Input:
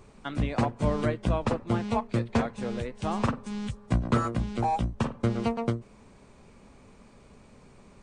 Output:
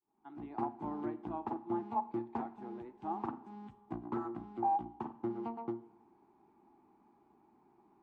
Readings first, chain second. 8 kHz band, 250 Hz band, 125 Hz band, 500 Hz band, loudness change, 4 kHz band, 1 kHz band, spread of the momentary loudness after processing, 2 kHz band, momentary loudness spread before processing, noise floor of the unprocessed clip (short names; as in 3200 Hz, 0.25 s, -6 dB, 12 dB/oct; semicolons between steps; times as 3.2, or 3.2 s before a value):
under -30 dB, -10.5 dB, -23.0 dB, -12.0 dB, -10.5 dB, under -25 dB, -5.0 dB, 11 LU, -20.5 dB, 7 LU, -55 dBFS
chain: opening faded in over 0.59 s; double band-pass 530 Hz, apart 1.3 oct; Schroeder reverb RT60 0.84 s, combs from 27 ms, DRR 14.5 dB; Doppler distortion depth 0.1 ms; gain -1 dB